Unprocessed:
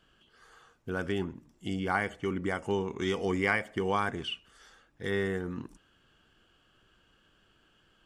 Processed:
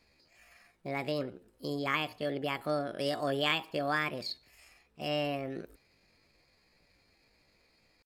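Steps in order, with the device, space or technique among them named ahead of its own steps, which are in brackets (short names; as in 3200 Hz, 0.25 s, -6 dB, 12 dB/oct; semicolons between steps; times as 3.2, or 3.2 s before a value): chipmunk voice (pitch shift +7 st); gain -2 dB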